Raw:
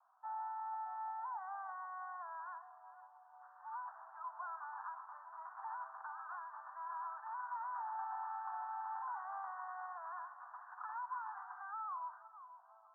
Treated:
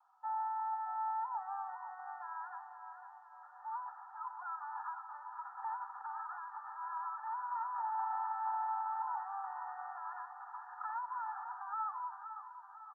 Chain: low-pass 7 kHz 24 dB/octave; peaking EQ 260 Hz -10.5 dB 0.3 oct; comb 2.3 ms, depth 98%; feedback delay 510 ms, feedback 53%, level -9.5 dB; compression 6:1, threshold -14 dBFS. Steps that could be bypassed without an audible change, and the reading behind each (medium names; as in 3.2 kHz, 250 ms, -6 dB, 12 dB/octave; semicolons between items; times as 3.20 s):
low-pass 7 kHz: input has nothing above 1.8 kHz; peaking EQ 260 Hz: input has nothing below 640 Hz; compression, threshold -14 dBFS: peak at its input -27.0 dBFS